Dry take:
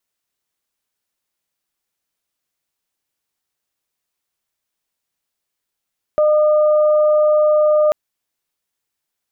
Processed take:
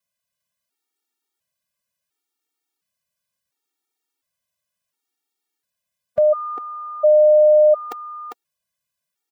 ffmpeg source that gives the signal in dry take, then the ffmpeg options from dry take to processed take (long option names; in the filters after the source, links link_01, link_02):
-f lavfi -i "aevalsrc='0.299*sin(2*PI*607*t)+0.0596*sin(2*PI*1214*t)':duration=1.74:sample_rate=44100"
-filter_complex "[0:a]highpass=61,asplit=2[link_01][link_02];[link_02]aecho=0:1:400:0.531[link_03];[link_01][link_03]amix=inputs=2:normalize=0,afftfilt=real='re*gt(sin(2*PI*0.71*pts/sr)*(1-2*mod(floor(b*sr/1024/240),2)),0)':imag='im*gt(sin(2*PI*0.71*pts/sr)*(1-2*mod(floor(b*sr/1024/240),2)),0)':win_size=1024:overlap=0.75"